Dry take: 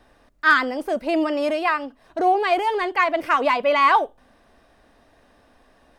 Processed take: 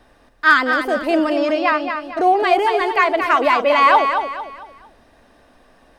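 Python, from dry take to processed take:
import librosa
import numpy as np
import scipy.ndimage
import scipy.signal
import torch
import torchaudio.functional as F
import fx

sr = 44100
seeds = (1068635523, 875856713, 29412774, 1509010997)

p1 = fx.steep_lowpass(x, sr, hz=6600.0, slope=36, at=(1.33, 1.82))
p2 = p1 + fx.echo_feedback(p1, sr, ms=225, feedback_pct=36, wet_db=-7, dry=0)
y = F.gain(torch.from_numpy(p2), 3.5).numpy()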